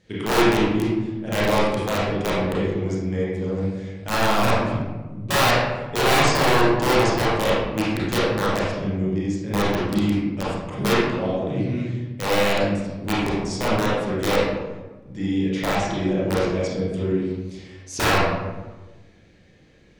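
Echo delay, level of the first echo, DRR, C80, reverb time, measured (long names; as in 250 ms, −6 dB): no echo audible, no echo audible, −8.0 dB, 1.0 dB, 1.2 s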